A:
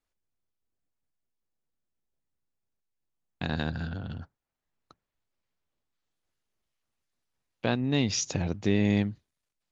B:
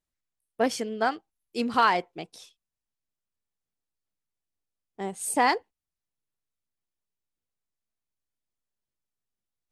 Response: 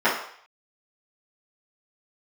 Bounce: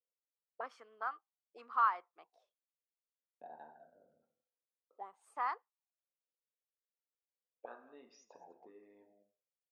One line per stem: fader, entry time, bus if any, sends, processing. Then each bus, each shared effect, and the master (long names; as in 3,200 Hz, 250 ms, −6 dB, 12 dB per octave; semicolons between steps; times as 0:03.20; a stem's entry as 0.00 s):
−5.0 dB, 0.00 s, send −18.5 dB, echo send −14.5 dB, spectral envelope exaggerated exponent 2
−1.0 dB, 0.00 s, no send, no echo send, no processing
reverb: on, RT60 0.60 s, pre-delay 3 ms
echo: single-tap delay 203 ms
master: high-pass filter 300 Hz 12 dB per octave; envelope filter 500–1,200 Hz, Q 8.2, up, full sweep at −30.5 dBFS